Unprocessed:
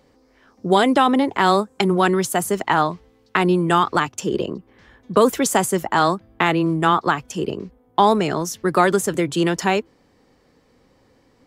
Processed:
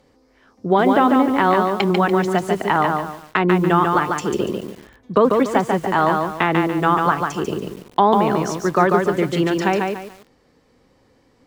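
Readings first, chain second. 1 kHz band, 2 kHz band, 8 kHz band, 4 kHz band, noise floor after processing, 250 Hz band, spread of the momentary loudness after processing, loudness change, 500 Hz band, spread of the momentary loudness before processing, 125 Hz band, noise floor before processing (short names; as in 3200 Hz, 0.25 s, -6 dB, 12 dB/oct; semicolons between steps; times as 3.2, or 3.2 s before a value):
+1.5 dB, +0.5 dB, -9.0 dB, -4.0 dB, -58 dBFS, +1.5 dB, 10 LU, +1.0 dB, +1.5 dB, 9 LU, +1.5 dB, -59 dBFS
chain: treble ducked by the level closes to 1900 Hz, closed at -13.5 dBFS; lo-fi delay 0.144 s, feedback 35%, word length 7-bit, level -3.5 dB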